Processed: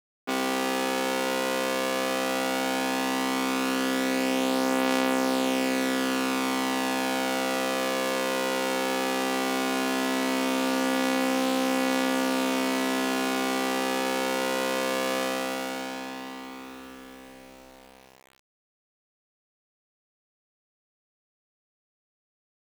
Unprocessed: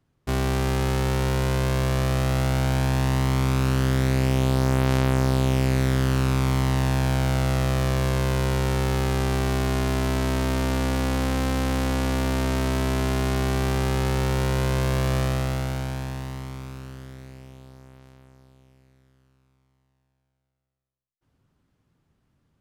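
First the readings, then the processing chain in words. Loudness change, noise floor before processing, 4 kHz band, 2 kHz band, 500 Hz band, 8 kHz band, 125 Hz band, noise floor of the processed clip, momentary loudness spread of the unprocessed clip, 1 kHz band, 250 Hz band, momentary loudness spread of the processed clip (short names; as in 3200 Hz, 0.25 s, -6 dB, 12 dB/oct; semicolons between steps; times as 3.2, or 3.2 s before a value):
-2.5 dB, -74 dBFS, +3.0 dB, +3.0 dB, +0.5 dB, +2.0 dB, -26.0 dB, under -85 dBFS, 6 LU, +2.0 dB, -0.5 dB, 7 LU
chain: HPF 260 Hz 24 dB/oct; low-pass opened by the level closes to 2000 Hz, open at -28.5 dBFS; bell 2700 Hz +2.5 dB; comb 4.1 ms, depth 67%; requantised 8-bit, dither none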